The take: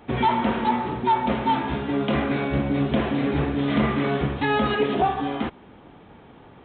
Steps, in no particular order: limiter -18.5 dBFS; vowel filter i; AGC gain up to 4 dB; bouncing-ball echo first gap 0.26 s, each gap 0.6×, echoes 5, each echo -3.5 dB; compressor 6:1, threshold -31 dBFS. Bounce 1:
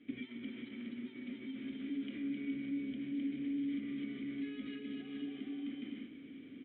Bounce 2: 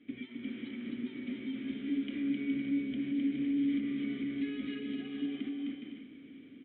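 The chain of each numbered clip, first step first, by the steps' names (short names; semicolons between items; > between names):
bouncing-ball echo > limiter > AGC > compressor > vowel filter; compressor > AGC > bouncing-ball echo > limiter > vowel filter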